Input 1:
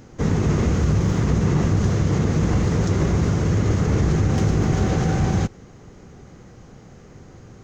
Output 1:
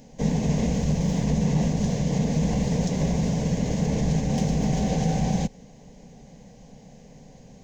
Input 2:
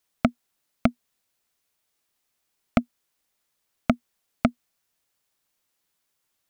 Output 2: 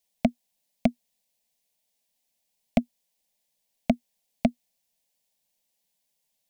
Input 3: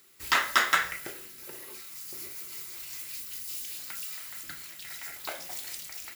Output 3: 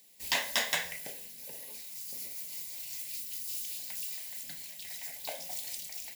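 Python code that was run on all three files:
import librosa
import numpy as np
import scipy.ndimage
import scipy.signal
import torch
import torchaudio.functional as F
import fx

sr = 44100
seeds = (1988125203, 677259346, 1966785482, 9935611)

y = fx.fixed_phaser(x, sr, hz=350.0, stages=6)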